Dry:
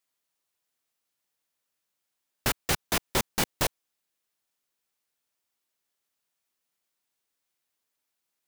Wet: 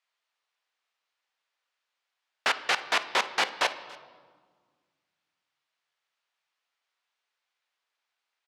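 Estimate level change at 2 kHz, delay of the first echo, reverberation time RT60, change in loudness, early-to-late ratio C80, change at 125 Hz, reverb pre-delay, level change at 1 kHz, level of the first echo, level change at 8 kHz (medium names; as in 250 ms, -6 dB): +6.0 dB, 285 ms, 1.6 s, +1.0 dB, 14.5 dB, under -20 dB, 4 ms, +5.0 dB, -22.0 dB, -7.0 dB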